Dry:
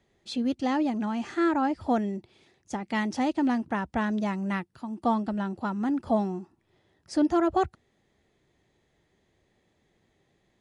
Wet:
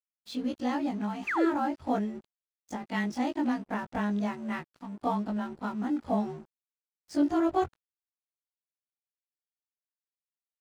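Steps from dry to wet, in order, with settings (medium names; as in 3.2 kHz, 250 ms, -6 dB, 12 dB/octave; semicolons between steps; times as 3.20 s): short-time spectra conjugated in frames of 48 ms; crossover distortion -51.5 dBFS; painted sound fall, 1.27–1.47 s, 300–2800 Hz -30 dBFS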